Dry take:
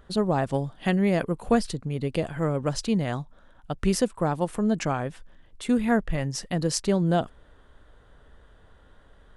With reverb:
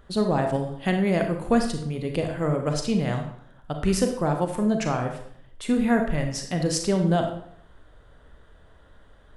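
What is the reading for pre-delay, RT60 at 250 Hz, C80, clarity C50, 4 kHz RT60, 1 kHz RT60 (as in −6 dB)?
31 ms, 0.75 s, 10.0 dB, 6.5 dB, 0.50 s, 0.65 s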